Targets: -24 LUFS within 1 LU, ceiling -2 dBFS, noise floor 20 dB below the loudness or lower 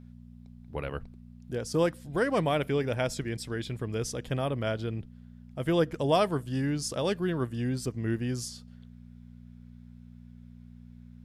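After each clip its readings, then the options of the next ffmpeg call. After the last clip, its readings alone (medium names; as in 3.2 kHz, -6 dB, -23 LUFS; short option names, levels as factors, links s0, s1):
hum 60 Hz; highest harmonic 240 Hz; hum level -48 dBFS; loudness -30.5 LUFS; peak level -12.5 dBFS; loudness target -24.0 LUFS
-> -af "bandreject=f=60:t=h:w=4,bandreject=f=120:t=h:w=4,bandreject=f=180:t=h:w=4,bandreject=f=240:t=h:w=4"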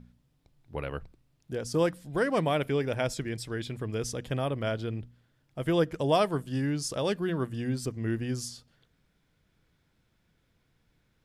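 hum not found; loudness -30.5 LUFS; peak level -13.0 dBFS; loudness target -24.0 LUFS
-> -af "volume=2.11"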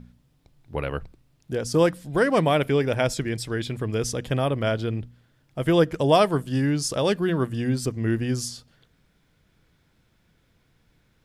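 loudness -24.5 LUFS; peak level -6.5 dBFS; noise floor -65 dBFS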